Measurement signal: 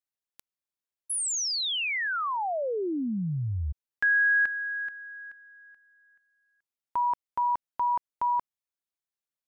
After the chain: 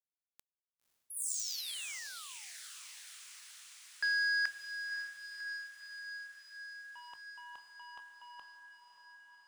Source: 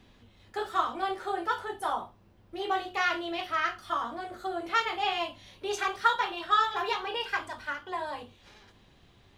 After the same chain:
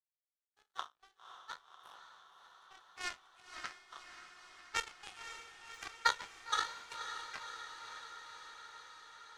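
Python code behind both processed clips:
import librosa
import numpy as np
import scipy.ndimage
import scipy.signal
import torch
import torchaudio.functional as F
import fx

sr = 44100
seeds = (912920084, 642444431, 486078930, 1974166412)

p1 = fx.spec_trails(x, sr, decay_s=0.48)
p2 = scipy.signal.sosfilt(scipy.signal.butter(2, 1200.0, 'highpass', fs=sr, output='sos'), p1)
p3 = fx.power_curve(p2, sr, exponent=3.0)
p4 = p3 + fx.echo_diffused(p3, sr, ms=546, feedback_pct=73, wet_db=-9.0, dry=0)
y = p4 * librosa.db_to_amplitude(1.5)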